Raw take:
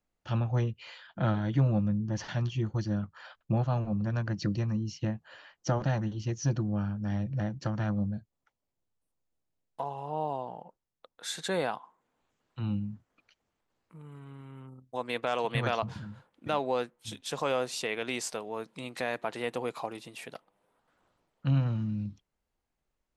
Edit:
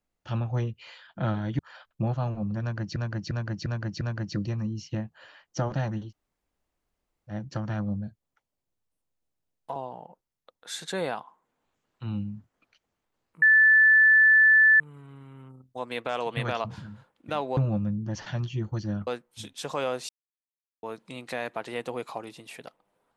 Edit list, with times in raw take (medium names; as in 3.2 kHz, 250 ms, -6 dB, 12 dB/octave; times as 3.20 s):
1.59–3.09 s: move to 16.75 s
4.11–4.46 s: loop, 5 plays
6.18–7.42 s: room tone, crossfade 0.10 s
9.86–10.32 s: delete
13.98 s: add tone 1.75 kHz -14 dBFS 1.38 s
17.77–18.51 s: mute